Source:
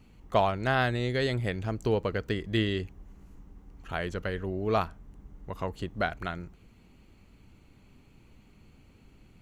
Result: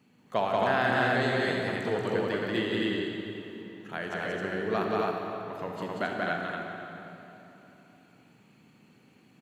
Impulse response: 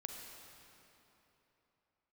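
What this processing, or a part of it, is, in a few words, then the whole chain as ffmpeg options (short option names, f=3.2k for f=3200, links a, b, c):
stadium PA: -filter_complex "[0:a]highpass=f=140:w=0.5412,highpass=f=140:w=1.3066,equalizer=f=1.7k:t=o:w=0.22:g=6,aecho=1:1:183.7|268.2:0.794|0.794[a];[1:a]atrim=start_sample=2205[b];[a][b]afir=irnorm=-1:irlink=0"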